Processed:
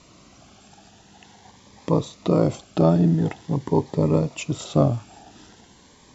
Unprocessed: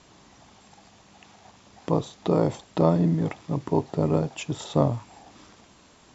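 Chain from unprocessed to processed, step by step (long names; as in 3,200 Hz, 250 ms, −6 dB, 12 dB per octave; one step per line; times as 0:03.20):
phaser whose notches keep moving one way rising 0.46 Hz
level +4 dB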